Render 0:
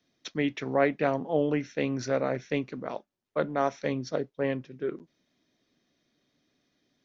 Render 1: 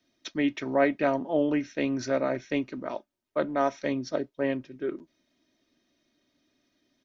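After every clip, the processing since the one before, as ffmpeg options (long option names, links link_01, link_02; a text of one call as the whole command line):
ffmpeg -i in.wav -af "aecho=1:1:3.2:0.47" out.wav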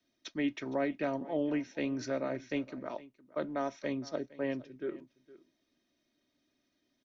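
ffmpeg -i in.wav -filter_complex "[0:a]acrossover=split=410|3000[link_01][link_02][link_03];[link_02]acompressor=threshold=-27dB:ratio=6[link_04];[link_01][link_04][link_03]amix=inputs=3:normalize=0,aecho=1:1:463:0.106,volume=-6dB" out.wav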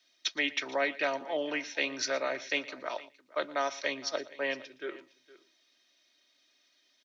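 ffmpeg -i in.wav -filter_complex "[0:a]crystalizer=i=9.5:c=0,acrossover=split=390 5400:gain=0.141 1 0.0708[link_01][link_02][link_03];[link_01][link_02][link_03]amix=inputs=3:normalize=0,aecho=1:1:117:0.106,volume=1.5dB" out.wav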